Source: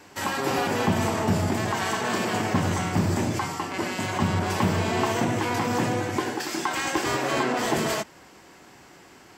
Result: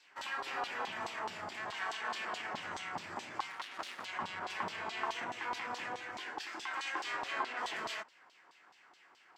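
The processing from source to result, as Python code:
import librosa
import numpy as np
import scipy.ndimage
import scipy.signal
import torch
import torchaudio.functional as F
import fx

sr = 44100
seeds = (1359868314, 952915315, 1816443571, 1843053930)

y = fx.self_delay(x, sr, depth_ms=0.8, at=(3.5, 4.05))
y = fx.filter_lfo_bandpass(y, sr, shape='saw_down', hz=4.7, low_hz=890.0, high_hz=4200.0, q=2.0)
y = F.gain(torch.from_numpy(y), -5.0).numpy()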